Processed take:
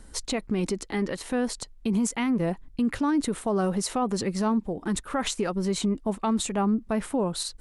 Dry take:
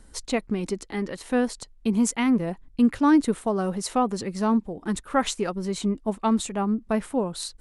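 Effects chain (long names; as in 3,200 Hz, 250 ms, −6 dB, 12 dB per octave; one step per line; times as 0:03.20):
brickwall limiter −21 dBFS, peak gain reduction 11 dB
level +3 dB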